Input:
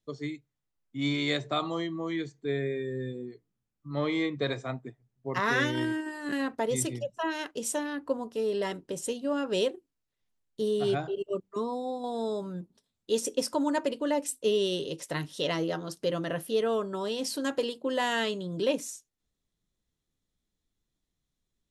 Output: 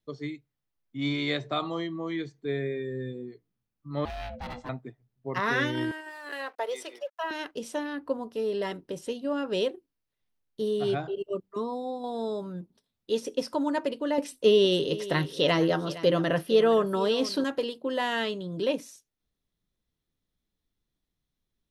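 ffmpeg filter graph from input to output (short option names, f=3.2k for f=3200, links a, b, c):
-filter_complex "[0:a]asettb=1/sr,asplit=3[a][b][c];[a]atrim=end=4.054[d];[b]atrim=start=4.05:end=4.69,asetpts=PTS-STARTPTS,afade=t=in:d=0.004:c=qsin,afade=t=out:st=0.636:d=0.004:c=qsin,acrossover=split=3500[e][f];[f]acompressor=threshold=-47dB:ratio=4:attack=1:release=60[g];[e][g]amix=inputs=2:normalize=0,asoftclip=type=hard:threshold=-31.5dB,aeval=exprs='val(0)*sin(2*PI*370*n/s)':c=same[h];[c]atrim=start=4.686[i];[d][h]acrossfade=d=0.004:c1=hsin:c2=qsin[j];[j][i]acrossfade=d=0.004:c1=qsin:c2=hsin,asettb=1/sr,asplit=3[k][l][m];[k]atrim=end=5.914[n];[l]atrim=start=5.91:end=7.31,asetpts=PTS-STARTPTS,afade=t=in:d=0.004:c=qsin,afade=t=out:st=1.396:d=0.004:c=qsin,aeval=exprs='sgn(val(0))*max(abs(val(0))-0.00188,0)':c=same,highpass=f=470:w=0.5412,highpass=f=470:w=1.3066[o];[m]atrim=start=7.306[p];[n][o]acrossfade=d=0.004:c1=hsin:c2=qsin[q];[q][p]acrossfade=d=0.004:c1=qsin:c2=hsin,asettb=1/sr,asplit=3[r][s][t];[r]atrim=end=14.184[u];[s]atrim=start=14.18:end=17.44,asetpts=PTS-STARTPTS,afade=t=in:d=0.004:c=qsin,afade=t=out:st=3.256:d=0.004:c=qsin,acontrast=61,aecho=1:1:462:0.158,atrim=end_sample=143766[v];[t]atrim=start=17.436[w];[u][v]acrossfade=d=0.004:c1=hsin:c2=qsin[x];[x][w]acrossfade=d=0.004:c1=qsin:c2=hsin,equalizer=f=7.5k:t=o:w=0.58:g=-7.5,bandreject=f=6.9k:w=30,acrossover=split=5900[y][z];[z]acompressor=threshold=-50dB:ratio=4:attack=1:release=60[aa];[y][aa]amix=inputs=2:normalize=0"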